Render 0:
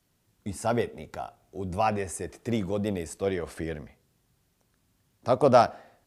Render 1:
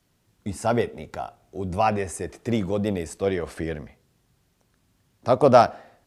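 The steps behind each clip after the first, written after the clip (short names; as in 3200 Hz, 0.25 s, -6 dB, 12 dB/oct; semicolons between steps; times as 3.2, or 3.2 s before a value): high shelf 9300 Hz -6 dB; gain +4 dB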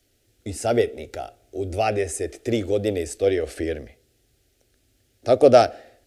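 fixed phaser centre 420 Hz, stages 4; gain +5 dB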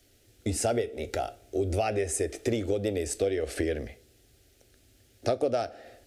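compressor 8:1, threshold -28 dBFS, peak gain reduction 19.5 dB; on a send at -16 dB: reverb, pre-delay 5 ms; on the sum: gain +3.5 dB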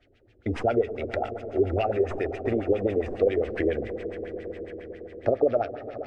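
tracing distortion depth 0.064 ms; swelling echo 0.112 s, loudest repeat 5, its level -17 dB; LFO low-pass sine 7.3 Hz 390–2800 Hz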